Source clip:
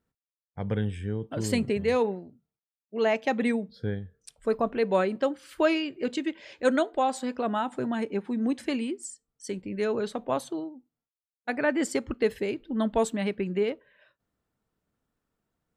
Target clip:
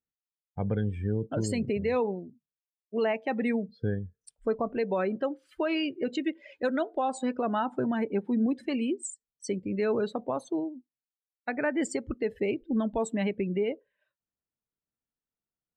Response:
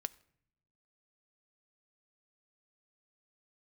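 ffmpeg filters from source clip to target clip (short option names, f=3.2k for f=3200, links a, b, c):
-af "alimiter=limit=-22.5dB:level=0:latency=1:release=219,afftdn=nr=21:nf=-42,volume=3dB"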